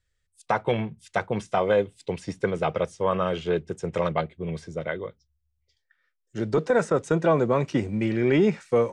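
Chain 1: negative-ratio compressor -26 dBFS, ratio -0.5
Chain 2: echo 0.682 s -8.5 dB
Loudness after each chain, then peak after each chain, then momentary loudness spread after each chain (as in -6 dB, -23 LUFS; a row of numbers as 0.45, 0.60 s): -29.5, -25.5 LUFS; -10.5, -9.0 dBFS; 6, 12 LU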